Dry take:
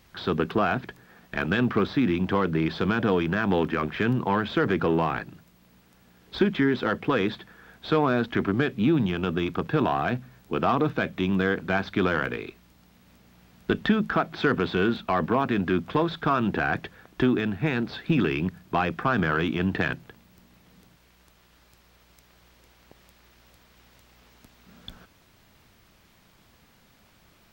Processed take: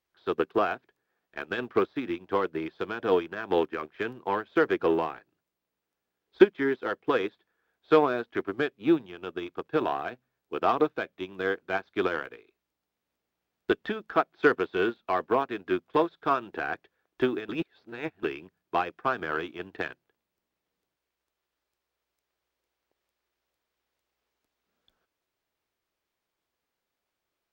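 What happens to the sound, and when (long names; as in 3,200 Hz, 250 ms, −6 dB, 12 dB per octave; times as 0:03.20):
0:17.49–0:18.23: reverse
whole clip: low shelf with overshoot 270 Hz −9 dB, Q 1.5; expander for the loud parts 2.5 to 1, over −37 dBFS; level +6 dB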